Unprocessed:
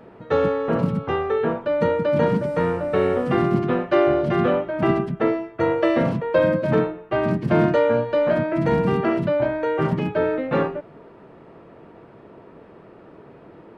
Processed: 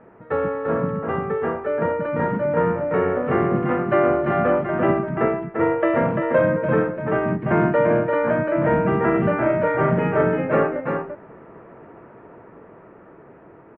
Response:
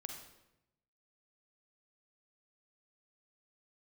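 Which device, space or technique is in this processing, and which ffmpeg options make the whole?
action camera in a waterproof case: -filter_complex "[0:a]equalizer=f=2200:t=o:w=2.9:g=4.5,asettb=1/sr,asplit=3[s0][s1][s2];[s0]atrim=end=9.104[s3];[s1]atrim=start=9.1:end=10.21,asetpts=PTS-STARTPTS,afade=t=in:d=0.004:c=qsin,afade=t=out:st=1.106:d=0.004:c=qsin,asplit=2[s4][s5];[s5]adelay=40,volume=0.708[s6];[s4][s6]amix=inputs=2:normalize=0,atrim=end_sample=48951[s7];[s2]atrim=start=10.206[s8];[s3][s7]acrossfade=d=0.004:c1=hsin:c2=qsin[s9];[s9][s8]acrossfade=d=0.004:c1=qsin:c2=hsin,lowpass=f=2100:w=0.5412,lowpass=f=2100:w=1.3066,aecho=1:1:343:0.562,dynaudnorm=f=810:g=7:m=3.76,volume=0.596" -ar 32000 -c:a aac -b:a 64k

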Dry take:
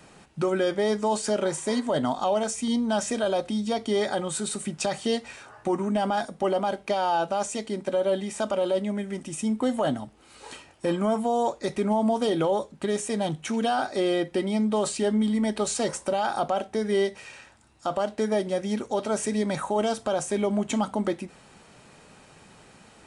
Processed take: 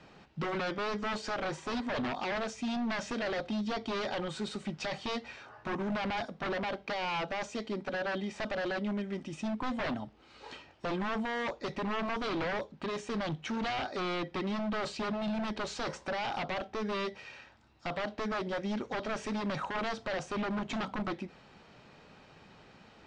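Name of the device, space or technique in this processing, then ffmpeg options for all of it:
synthesiser wavefolder: -af "aeval=exprs='0.0596*(abs(mod(val(0)/0.0596+3,4)-2)-1)':c=same,lowpass=f=5100:w=0.5412,lowpass=f=5100:w=1.3066,volume=0.631"

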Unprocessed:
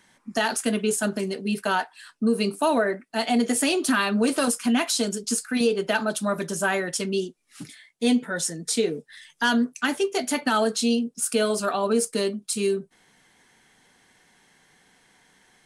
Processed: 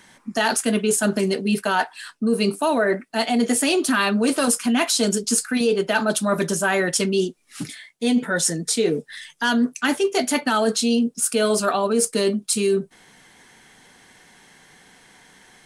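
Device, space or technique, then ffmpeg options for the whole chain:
compression on the reversed sound: -af "areverse,acompressor=threshold=0.0562:ratio=6,areverse,volume=2.66"

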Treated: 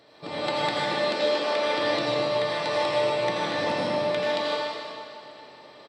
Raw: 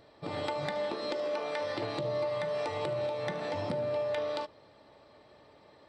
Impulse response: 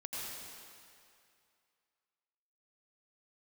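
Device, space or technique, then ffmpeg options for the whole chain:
PA in a hall: -filter_complex "[0:a]highpass=160,equalizer=f=4000:t=o:w=2.3:g=5.5,aecho=1:1:152:0.376[s0];[1:a]atrim=start_sample=2205[s1];[s0][s1]afir=irnorm=-1:irlink=0,volume=2.24"

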